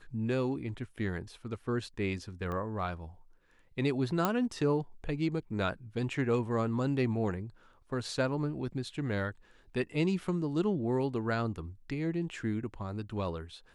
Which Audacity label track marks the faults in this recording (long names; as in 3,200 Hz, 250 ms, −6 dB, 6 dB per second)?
2.520000	2.520000	click −26 dBFS
4.250000	4.250000	click −13 dBFS